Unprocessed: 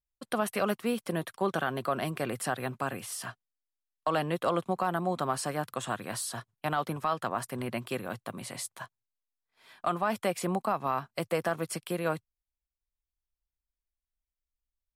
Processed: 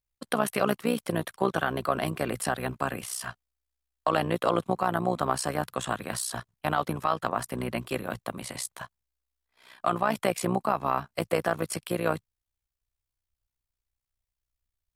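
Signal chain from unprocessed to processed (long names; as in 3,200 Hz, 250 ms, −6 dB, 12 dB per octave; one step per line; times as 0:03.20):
amplitude modulation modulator 62 Hz, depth 65%
level +6.5 dB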